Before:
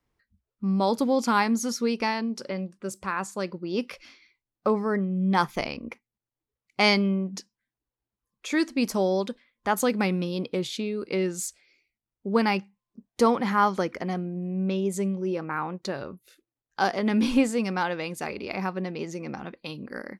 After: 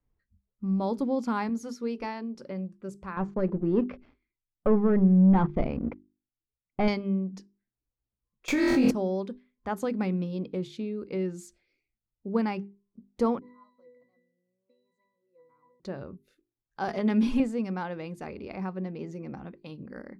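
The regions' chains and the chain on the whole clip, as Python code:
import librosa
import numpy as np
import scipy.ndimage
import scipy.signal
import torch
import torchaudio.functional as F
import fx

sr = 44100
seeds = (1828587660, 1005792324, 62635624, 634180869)

y = fx.chain(x, sr, fx.peak_eq(hz=190.0, db=-13.5, octaves=0.31),
    fx.hum_notches(base_hz=50, count=9), at=(1.49, 2.35))
y = fx.chain(y, sr, fx.leveller(passes=3),
    fx.spacing_loss(db_at_10k=41), at=(3.17, 6.88))
y = fx.chain(y, sr, fx.zero_step(step_db=-33.5),
    fx.room_flutter(wall_m=4.0, rt60_s=0.75),
    fx.env_flatten(amount_pct=100), at=(8.48, 8.91))
y = fx.chain(y, sr, fx.riaa(side='recording'),
    fx.octave_resonator(note='B', decay_s=0.72), at=(13.39, 15.8))
y = fx.chain(y, sr, fx.tilt_eq(slope=1.5),
    fx.comb(ms=4.8, depth=0.81),
    fx.band_squash(depth_pct=40), at=(16.88, 17.4))
y = fx.tilt_eq(y, sr, slope=-3.0)
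y = fx.hum_notches(y, sr, base_hz=50, count=8)
y = F.gain(torch.from_numpy(y), -8.5).numpy()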